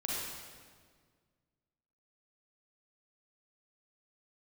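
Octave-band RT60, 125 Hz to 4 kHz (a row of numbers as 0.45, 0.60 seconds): 2.3, 2.1, 1.9, 1.6, 1.5, 1.4 seconds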